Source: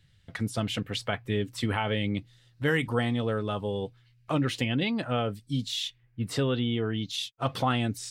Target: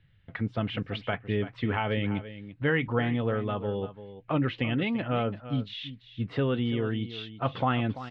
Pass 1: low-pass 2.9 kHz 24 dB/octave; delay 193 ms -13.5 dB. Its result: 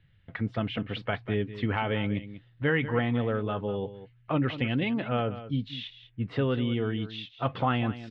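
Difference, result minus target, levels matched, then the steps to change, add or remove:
echo 146 ms early
change: delay 339 ms -13.5 dB

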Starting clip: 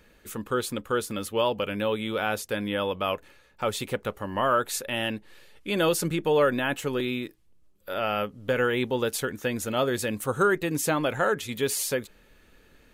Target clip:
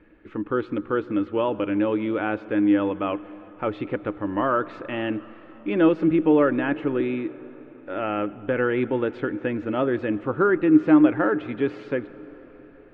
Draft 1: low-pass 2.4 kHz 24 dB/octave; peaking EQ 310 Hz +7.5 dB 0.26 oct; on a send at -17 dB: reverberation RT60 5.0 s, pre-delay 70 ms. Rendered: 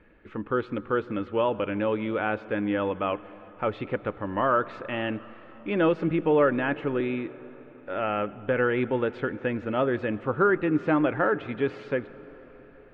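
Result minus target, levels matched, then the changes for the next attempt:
250 Hz band -3.5 dB
change: peaking EQ 310 Hz +18.5 dB 0.26 oct

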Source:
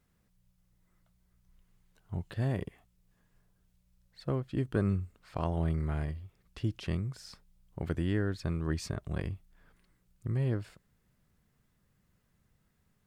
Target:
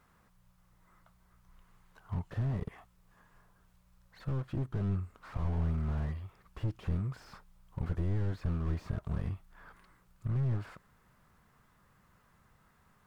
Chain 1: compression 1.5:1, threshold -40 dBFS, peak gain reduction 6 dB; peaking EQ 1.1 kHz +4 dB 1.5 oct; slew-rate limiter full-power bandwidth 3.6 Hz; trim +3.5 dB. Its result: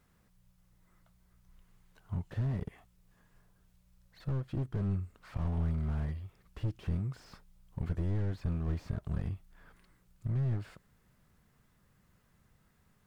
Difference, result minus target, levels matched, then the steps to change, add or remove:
1 kHz band -3.0 dB
change: peaking EQ 1.1 kHz +13.5 dB 1.5 oct

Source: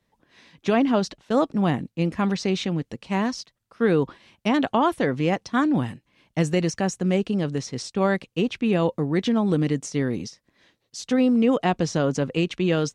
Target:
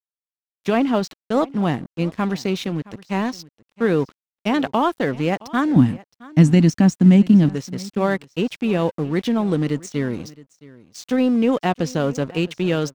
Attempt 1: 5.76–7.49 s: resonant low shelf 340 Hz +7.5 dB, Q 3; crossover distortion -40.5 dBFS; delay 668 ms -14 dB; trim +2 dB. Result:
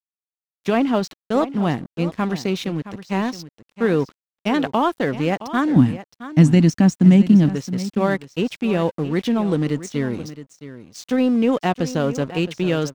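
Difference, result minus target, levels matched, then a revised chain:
echo-to-direct +7 dB
5.76–7.49 s: resonant low shelf 340 Hz +7.5 dB, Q 3; crossover distortion -40.5 dBFS; delay 668 ms -21 dB; trim +2 dB

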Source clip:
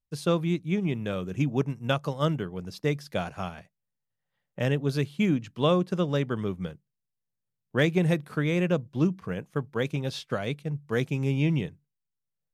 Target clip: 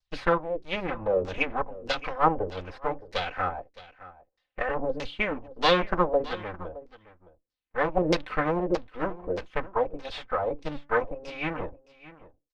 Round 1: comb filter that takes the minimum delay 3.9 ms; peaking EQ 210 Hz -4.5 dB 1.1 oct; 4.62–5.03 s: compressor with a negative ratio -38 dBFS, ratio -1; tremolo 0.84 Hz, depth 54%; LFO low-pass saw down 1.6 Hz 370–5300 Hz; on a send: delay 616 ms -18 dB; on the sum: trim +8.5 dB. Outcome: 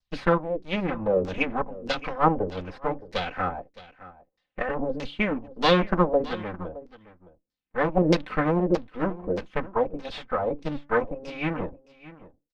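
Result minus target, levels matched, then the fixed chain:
250 Hz band +4.0 dB
comb filter that takes the minimum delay 3.9 ms; peaking EQ 210 Hz -14.5 dB 1.1 oct; 4.62–5.03 s: compressor with a negative ratio -38 dBFS, ratio -1; tremolo 0.84 Hz, depth 54%; LFO low-pass saw down 1.6 Hz 370–5300 Hz; on a send: delay 616 ms -18 dB; on the sum: trim +8.5 dB

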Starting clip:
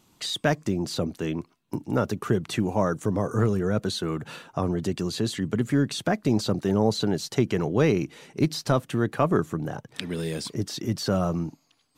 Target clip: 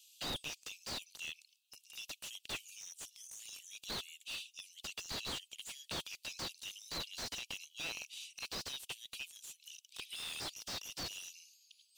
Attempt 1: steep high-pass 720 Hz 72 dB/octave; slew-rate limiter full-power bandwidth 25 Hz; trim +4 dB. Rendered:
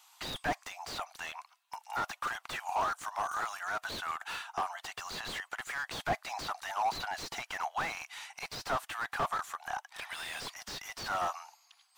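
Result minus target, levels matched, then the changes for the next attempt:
1 kHz band +13.0 dB
change: steep high-pass 2.6 kHz 72 dB/octave

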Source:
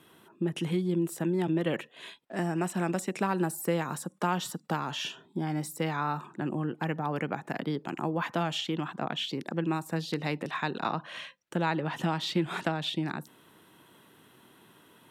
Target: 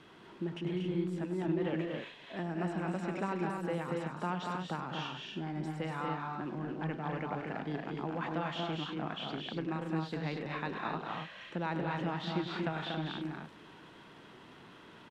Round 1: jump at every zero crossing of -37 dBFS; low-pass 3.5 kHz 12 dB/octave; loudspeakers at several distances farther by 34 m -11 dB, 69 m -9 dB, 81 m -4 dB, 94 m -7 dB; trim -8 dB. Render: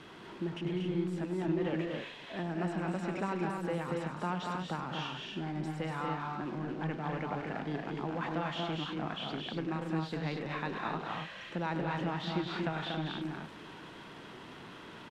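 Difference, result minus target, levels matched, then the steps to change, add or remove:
jump at every zero crossing: distortion +6 dB
change: jump at every zero crossing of -44 dBFS

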